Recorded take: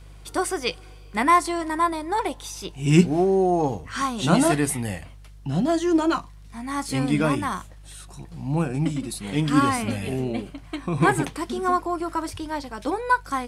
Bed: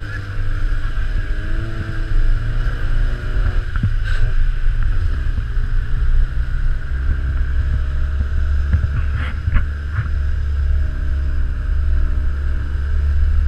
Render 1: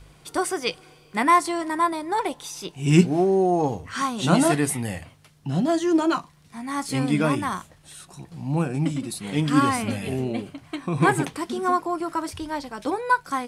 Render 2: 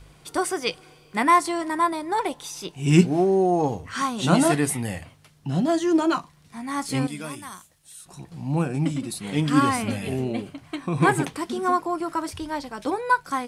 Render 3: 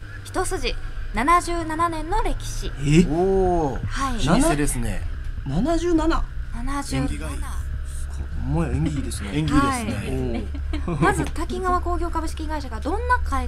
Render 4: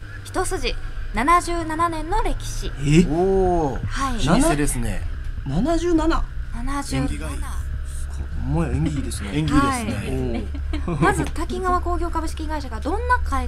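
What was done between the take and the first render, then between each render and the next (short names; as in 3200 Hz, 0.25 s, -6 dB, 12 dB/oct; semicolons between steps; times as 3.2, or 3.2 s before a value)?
de-hum 50 Hz, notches 2
7.07–8.06 pre-emphasis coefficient 0.8
add bed -10.5 dB
gain +1 dB; limiter -3 dBFS, peak gain reduction 1 dB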